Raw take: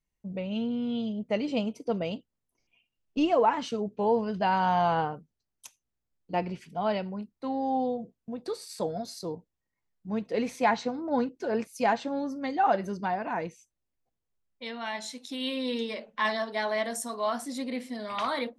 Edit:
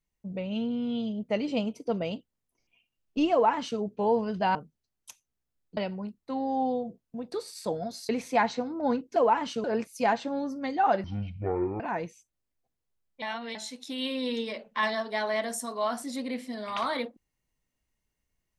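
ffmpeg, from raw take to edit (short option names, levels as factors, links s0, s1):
-filter_complex "[0:a]asplit=10[s0][s1][s2][s3][s4][s5][s6][s7][s8][s9];[s0]atrim=end=4.552[s10];[s1]atrim=start=5.108:end=6.332[s11];[s2]atrim=start=6.908:end=9.232[s12];[s3]atrim=start=10.368:end=11.442[s13];[s4]atrim=start=3.318:end=3.802[s14];[s5]atrim=start=11.438:end=12.844[s15];[s6]atrim=start=12.84:end=13.22,asetpts=PTS-STARTPTS,asetrate=22050,aresample=44100[s16];[s7]atrim=start=13.216:end=14.642[s17];[s8]atrim=start=14.638:end=14.972,asetpts=PTS-STARTPTS,areverse[s18];[s9]atrim=start=14.968[s19];[s10][s11]acrossfade=d=0.004:c1=hsin:c2=hsin[s20];[s20][s12]acrossfade=d=0.004:c1=hsin:c2=hsin[s21];[s21][s13]acrossfade=d=0.004:c1=hsin:c2=hsin[s22];[s22][s14]acrossfade=d=0.004:c1=hsin:c2=hsin[s23];[s23][s15]acrossfade=d=0.004:c1=hsin:c2=hsin[s24];[s24][s16]acrossfade=d=0.004:c1=hsin:c2=hsin[s25];[s25][s17]acrossfade=d=0.004:c1=hsin:c2=hsin[s26];[s26][s18]acrossfade=d=0.004:c1=hsin:c2=hsin[s27];[s27][s19]acrossfade=d=0.004:c1=hsin:c2=hsin"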